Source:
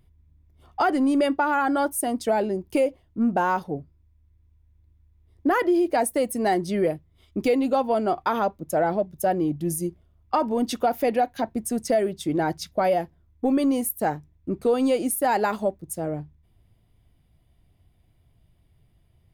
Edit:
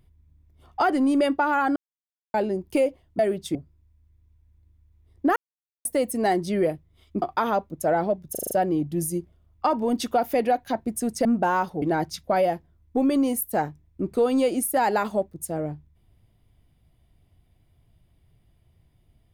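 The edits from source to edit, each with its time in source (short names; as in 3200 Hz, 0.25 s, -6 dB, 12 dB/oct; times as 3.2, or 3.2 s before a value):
1.76–2.34 mute
3.19–3.76 swap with 11.94–12.3
5.57–6.06 mute
7.43–8.11 cut
9.2 stutter 0.04 s, 6 plays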